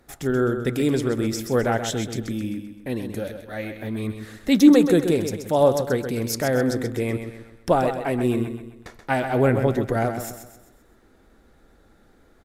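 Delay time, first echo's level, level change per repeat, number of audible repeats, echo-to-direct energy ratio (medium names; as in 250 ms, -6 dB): 130 ms, -8.5 dB, -7.5 dB, 4, -7.5 dB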